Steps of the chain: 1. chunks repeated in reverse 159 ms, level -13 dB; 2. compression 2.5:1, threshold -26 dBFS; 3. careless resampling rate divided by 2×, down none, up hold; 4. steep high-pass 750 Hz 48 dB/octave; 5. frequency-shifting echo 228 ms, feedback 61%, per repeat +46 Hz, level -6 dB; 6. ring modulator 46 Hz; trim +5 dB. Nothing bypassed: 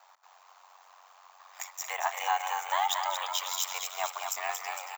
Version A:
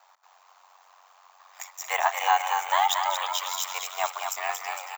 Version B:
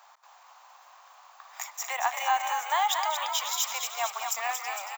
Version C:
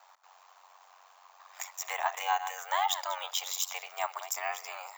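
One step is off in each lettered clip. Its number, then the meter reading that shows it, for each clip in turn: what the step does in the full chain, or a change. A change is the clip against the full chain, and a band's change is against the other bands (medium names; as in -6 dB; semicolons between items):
2, 8 kHz band -4.0 dB; 6, momentary loudness spread change +2 LU; 5, momentary loudness spread change +1 LU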